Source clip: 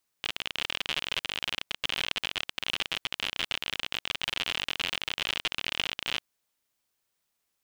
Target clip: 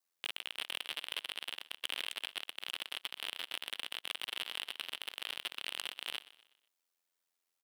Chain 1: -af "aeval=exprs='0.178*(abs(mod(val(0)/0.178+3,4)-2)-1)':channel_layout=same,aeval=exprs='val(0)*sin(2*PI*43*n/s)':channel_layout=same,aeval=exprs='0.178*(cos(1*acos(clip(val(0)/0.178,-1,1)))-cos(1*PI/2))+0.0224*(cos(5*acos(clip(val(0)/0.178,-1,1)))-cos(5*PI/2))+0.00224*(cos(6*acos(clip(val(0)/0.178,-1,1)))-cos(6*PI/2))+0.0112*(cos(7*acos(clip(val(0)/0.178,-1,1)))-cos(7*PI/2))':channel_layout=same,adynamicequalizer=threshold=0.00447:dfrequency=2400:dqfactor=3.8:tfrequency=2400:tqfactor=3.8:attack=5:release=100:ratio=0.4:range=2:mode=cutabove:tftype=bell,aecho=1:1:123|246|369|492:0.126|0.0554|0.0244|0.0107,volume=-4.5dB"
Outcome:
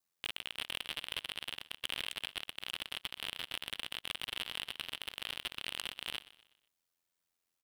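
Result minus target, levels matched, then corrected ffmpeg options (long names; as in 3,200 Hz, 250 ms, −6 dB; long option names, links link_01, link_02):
250 Hz band +5.0 dB
-af "aeval=exprs='0.178*(abs(mod(val(0)/0.178+3,4)-2)-1)':channel_layout=same,aeval=exprs='val(0)*sin(2*PI*43*n/s)':channel_layout=same,aeval=exprs='0.178*(cos(1*acos(clip(val(0)/0.178,-1,1)))-cos(1*PI/2))+0.0224*(cos(5*acos(clip(val(0)/0.178,-1,1)))-cos(5*PI/2))+0.00224*(cos(6*acos(clip(val(0)/0.178,-1,1)))-cos(6*PI/2))+0.0112*(cos(7*acos(clip(val(0)/0.178,-1,1)))-cos(7*PI/2))':channel_layout=same,adynamicequalizer=threshold=0.00447:dfrequency=2400:dqfactor=3.8:tfrequency=2400:tqfactor=3.8:attack=5:release=100:ratio=0.4:range=2:mode=cutabove:tftype=bell,highpass=330,aecho=1:1:123|246|369|492:0.126|0.0554|0.0244|0.0107,volume=-4.5dB"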